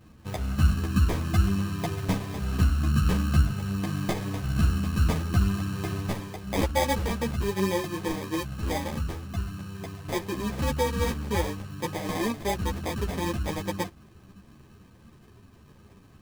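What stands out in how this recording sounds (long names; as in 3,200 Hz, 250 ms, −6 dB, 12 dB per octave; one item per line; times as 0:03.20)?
aliases and images of a low sample rate 1,400 Hz, jitter 0%
a shimmering, thickened sound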